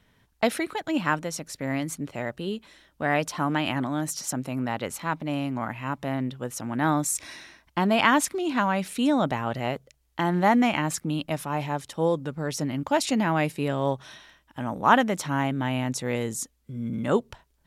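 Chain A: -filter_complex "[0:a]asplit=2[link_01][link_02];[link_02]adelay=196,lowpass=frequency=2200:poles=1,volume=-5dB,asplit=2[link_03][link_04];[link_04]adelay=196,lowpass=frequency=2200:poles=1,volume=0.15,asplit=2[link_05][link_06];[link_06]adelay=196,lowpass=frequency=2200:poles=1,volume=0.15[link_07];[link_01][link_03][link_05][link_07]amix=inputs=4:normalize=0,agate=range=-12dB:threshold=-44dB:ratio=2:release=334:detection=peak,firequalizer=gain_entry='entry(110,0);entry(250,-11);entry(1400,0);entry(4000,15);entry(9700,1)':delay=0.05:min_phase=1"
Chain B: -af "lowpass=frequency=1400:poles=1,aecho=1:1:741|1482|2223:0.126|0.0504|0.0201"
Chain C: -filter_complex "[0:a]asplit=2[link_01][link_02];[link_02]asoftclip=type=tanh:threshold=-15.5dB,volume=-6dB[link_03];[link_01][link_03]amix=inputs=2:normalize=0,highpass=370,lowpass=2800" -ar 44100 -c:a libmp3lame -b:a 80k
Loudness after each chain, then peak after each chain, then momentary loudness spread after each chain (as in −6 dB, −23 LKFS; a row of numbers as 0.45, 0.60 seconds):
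−26.0, −28.0, −27.0 LKFS; −1.0, −7.0, −3.5 dBFS; 12, 12, 14 LU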